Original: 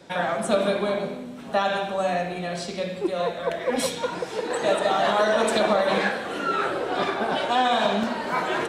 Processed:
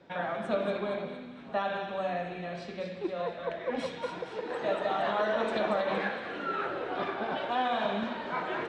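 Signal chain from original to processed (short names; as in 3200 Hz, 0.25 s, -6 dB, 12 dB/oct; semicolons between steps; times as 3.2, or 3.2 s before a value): LPF 3000 Hz 12 dB/oct; on a send: thin delay 0.232 s, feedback 44%, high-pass 1800 Hz, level -6 dB; on the sum: gain -8 dB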